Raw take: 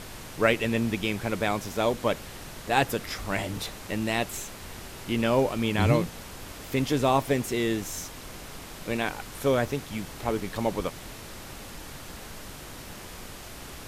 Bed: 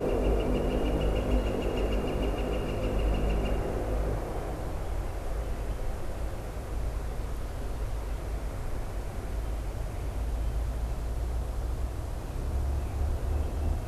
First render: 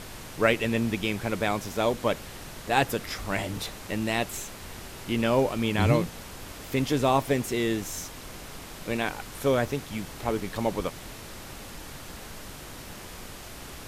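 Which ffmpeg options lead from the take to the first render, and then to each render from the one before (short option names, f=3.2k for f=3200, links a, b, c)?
-af anull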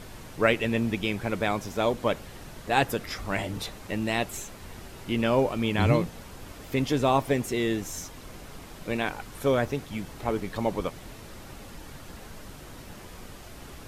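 -af "afftdn=nr=6:nf=-43"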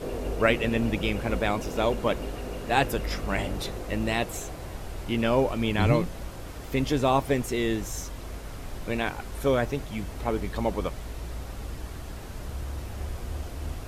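-filter_complex "[1:a]volume=-5dB[a];[0:a][a]amix=inputs=2:normalize=0"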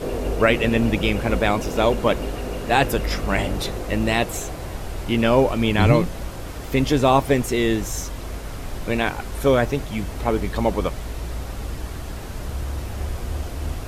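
-af "volume=6.5dB,alimiter=limit=-3dB:level=0:latency=1"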